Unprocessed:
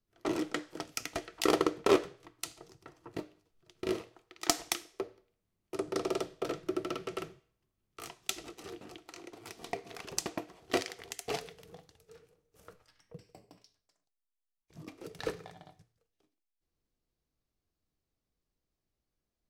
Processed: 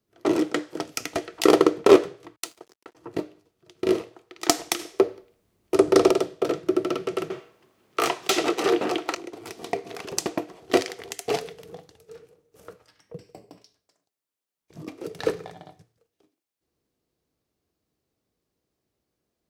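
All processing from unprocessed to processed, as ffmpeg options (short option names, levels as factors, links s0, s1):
-filter_complex "[0:a]asettb=1/sr,asplit=3[s0][s1][s2];[s0]atrim=end=2.364[s3];[s1]atrim=start=2.36:end=2.95,asetpts=PTS-STARTPTS,afade=t=in:d=0.004:c=qsin,afade=t=out:st=0.586:d=0.004:c=qsin,highpass=270,aeval=exprs='sgn(val(0))*max(abs(val(0))-0.00141,0)':c=same[s4];[s2]atrim=start=2.946[s5];[s3][s4]acrossfade=d=0.004:c1=hsin:c2=qsin[s6];[s6][s5]acrossfade=d=0.004:c1=qsin:c2=hsin,asettb=1/sr,asplit=3[s7][s8][s9];[s7]atrim=end=4.794[s10];[s8]atrim=start=4.79:end=6.11,asetpts=PTS-STARTPTS,afade=t=in:d=0.004:c=qsin,afade=t=out:st=1.316:d=0.004:c=qsin,asubboost=boost=10:cutoff=67,acontrast=80[s11];[s9]atrim=start=6.106[s12];[s10][s11]acrossfade=d=0.004:c1=hsin:c2=qsin[s13];[s13][s12]acrossfade=d=0.004:c1=qsin:c2=hsin,asettb=1/sr,asplit=3[s14][s15][s16];[s14]atrim=end=7.304[s17];[s15]atrim=start=7.3:end=9.15,asetpts=PTS-STARTPTS,afade=t=in:d=0.004:c=qsin,afade=t=out:st=1.846:d=0.004:c=qsin,asplit=2[s18][s19];[s19]highpass=f=720:p=1,volume=20,asoftclip=type=tanh:threshold=0.251[s20];[s18][s20]amix=inputs=2:normalize=0,lowpass=f=2200:p=1,volume=0.501,highshelf=f=12000:g=5.5[s21];[s16]atrim=start=9.146[s22];[s17][s21]acrossfade=d=0.004:c1=hsin:c2=qsin[s23];[s23][s22]acrossfade=d=0.004:c1=qsin:c2=hsin,highpass=74,equalizer=f=410:t=o:w=1.6:g=5.5,volume=2.11"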